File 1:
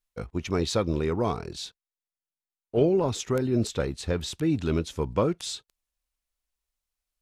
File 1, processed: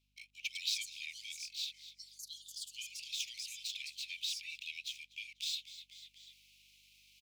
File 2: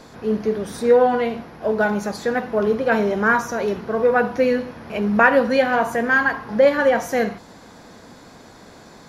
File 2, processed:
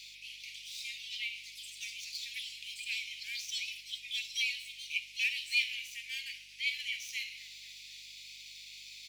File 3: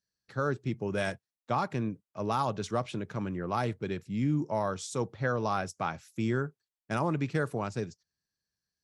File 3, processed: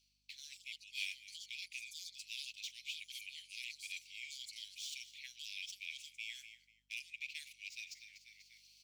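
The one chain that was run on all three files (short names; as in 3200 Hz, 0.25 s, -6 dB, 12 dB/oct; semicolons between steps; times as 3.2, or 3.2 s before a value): median filter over 5 samples; steep high-pass 2300 Hz 96 dB/oct; tilt -3.5 dB/oct; on a send: frequency-shifting echo 0.245 s, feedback 41%, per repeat -77 Hz, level -23.5 dB; on the sum: echoes that change speed 0.218 s, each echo +5 st, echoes 2, each echo -6 dB; reverse; upward compressor, threshold -48 dBFS; reverse; hum 50 Hz, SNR 35 dB; gain +7 dB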